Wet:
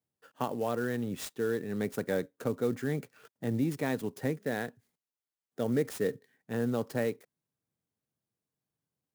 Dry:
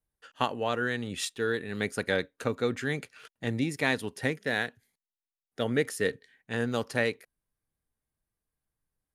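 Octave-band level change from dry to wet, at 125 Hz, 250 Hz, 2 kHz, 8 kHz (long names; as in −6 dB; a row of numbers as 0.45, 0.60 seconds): −0.5, +0.5, −10.0, −5.5 decibels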